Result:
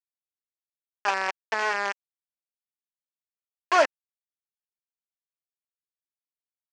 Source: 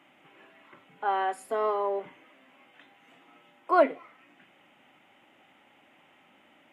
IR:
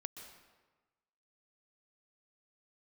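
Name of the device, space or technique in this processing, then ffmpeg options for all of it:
hand-held game console: -af "acrusher=bits=3:mix=0:aa=0.000001,highpass=450,equalizer=frequency=880:width_type=q:width=4:gain=4,equalizer=frequency=1700:width_type=q:width=4:gain=8,equalizer=frequency=2600:width_type=q:width=4:gain=4,equalizer=frequency=3800:width_type=q:width=4:gain=-9,lowpass=frequency=5900:width=0.5412,lowpass=frequency=5900:width=1.3066"

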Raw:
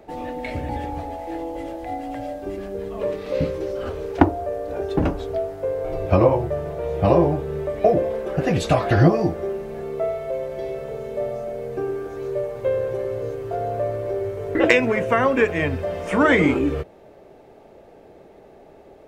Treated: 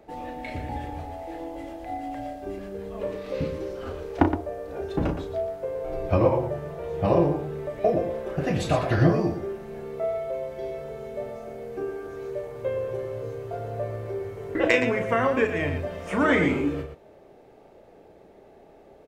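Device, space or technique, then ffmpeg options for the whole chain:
slapback doubling: -filter_complex "[0:a]asplit=3[link_01][link_02][link_03];[link_02]adelay=35,volume=-7.5dB[link_04];[link_03]adelay=118,volume=-9dB[link_05];[link_01][link_04][link_05]amix=inputs=3:normalize=0,volume=-5.5dB"

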